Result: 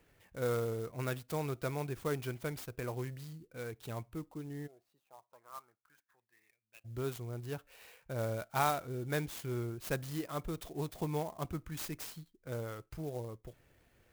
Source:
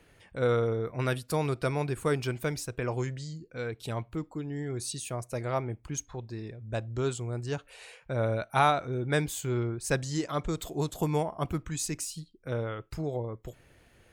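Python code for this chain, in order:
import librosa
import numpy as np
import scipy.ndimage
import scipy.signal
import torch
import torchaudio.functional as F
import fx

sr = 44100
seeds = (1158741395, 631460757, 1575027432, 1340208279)

y = fx.bandpass_q(x, sr, hz=fx.line((4.66, 610.0), (6.84, 2800.0)), q=7.6, at=(4.66, 6.84), fade=0.02)
y = fx.clock_jitter(y, sr, seeds[0], jitter_ms=0.038)
y = y * 10.0 ** (-7.5 / 20.0)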